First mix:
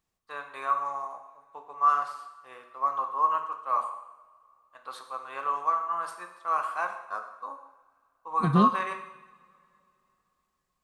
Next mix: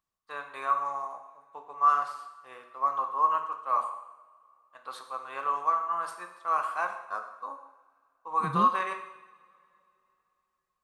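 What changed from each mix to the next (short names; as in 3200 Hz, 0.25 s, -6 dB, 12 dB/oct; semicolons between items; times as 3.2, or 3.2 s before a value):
second voice -10.0 dB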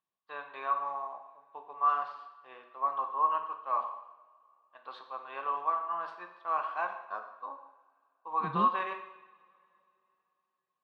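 master: add speaker cabinet 200–3600 Hz, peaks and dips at 270 Hz -3 dB, 500 Hz -4 dB, 1300 Hz -8 dB, 2100 Hz -6 dB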